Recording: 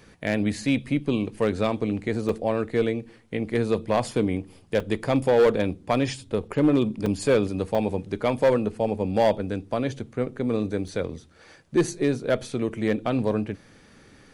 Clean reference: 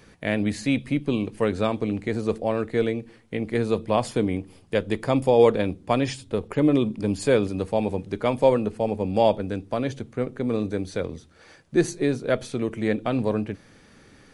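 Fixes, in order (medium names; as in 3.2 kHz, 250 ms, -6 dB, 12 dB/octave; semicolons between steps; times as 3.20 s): clip repair -13 dBFS; interpolate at 2.29/4.80/7.06/7.75/10.88 s, 3.2 ms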